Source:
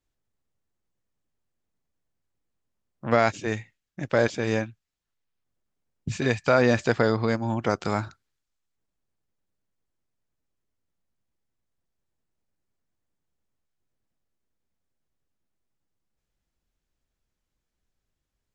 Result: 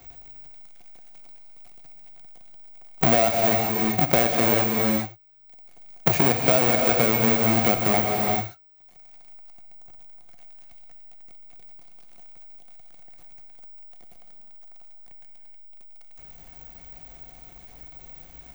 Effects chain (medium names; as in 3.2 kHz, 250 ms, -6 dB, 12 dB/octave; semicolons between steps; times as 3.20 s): square wave that keeps the level; in parallel at -1.5 dB: peak limiter -15 dBFS, peak gain reduction 9.5 dB; on the sum: careless resampling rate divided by 2×, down none, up zero stuff; small resonant body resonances 720/2200 Hz, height 15 dB, ringing for 45 ms; on a send at -3 dB: reverberation, pre-delay 3 ms; on the sum: three bands compressed up and down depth 100%; trim -10 dB